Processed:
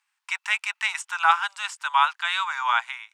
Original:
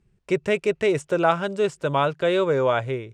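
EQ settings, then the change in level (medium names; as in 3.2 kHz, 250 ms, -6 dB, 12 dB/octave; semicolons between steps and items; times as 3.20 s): steep high-pass 850 Hz 72 dB/octave; +5.5 dB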